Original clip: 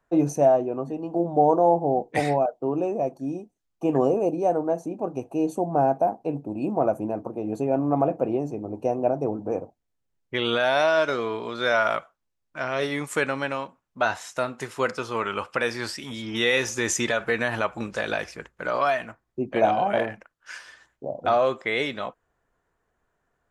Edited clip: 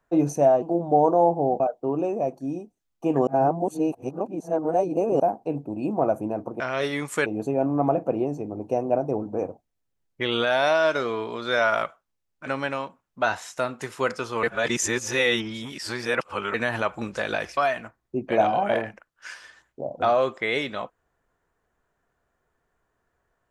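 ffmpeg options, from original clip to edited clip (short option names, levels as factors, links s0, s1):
-filter_complex "[0:a]asplit=11[s0][s1][s2][s3][s4][s5][s6][s7][s8][s9][s10];[s0]atrim=end=0.622[s11];[s1]atrim=start=1.068:end=2.052[s12];[s2]atrim=start=2.388:end=4.062[s13];[s3]atrim=start=4.058:end=5.992,asetpts=PTS-STARTPTS,areverse[s14];[s4]atrim=start=5.988:end=7.392[s15];[s5]atrim=start=12.588:end=13.252[s16];[s6]atrim=start=7.388:end=12.592[s17];[s7]atrim=start=13.248:end=15.222[s18];[s8]atrim=start=15.218:end=17.332,asetpts=PTS-STARTPTS,areverse[s19];[s9]atrim=start=17.328:end=18.362[s20];[s10]atrim=start=18.808[s21];[s11][s12]acrossfade=d=0.004:c1=hsin:c2=hsin[s22];[s22][s13]acrossfade=d=0.004:c1=hsin:c2=hsin[s23];[s23][s14]acrossfade=d=0.004:c1=hsin:c2=hsin[s24];[s24][s15]acrossfade=d=0.004:c1=hsin:c2=hsin[s25];[s25][s16]acrossfade=d=0.004:c1=hsin:c2=hsin[s26];[s26][s17]acrossfade=d=0.004:c1=hsin:c2=hsin[s27];[s27][s18]acrossfade=d=0.004:c1=hsin:c2=hsin[s28];[s28][s19]acrossfade=d=0.004:c1=hsin:c2=hsin[s29];[s29][s20]acrossfade=d=0.004:c1=hsin:c2=hsin[s30];[s30][s21]acrossfade=d=0.004:c1=hsin:c2=hsin"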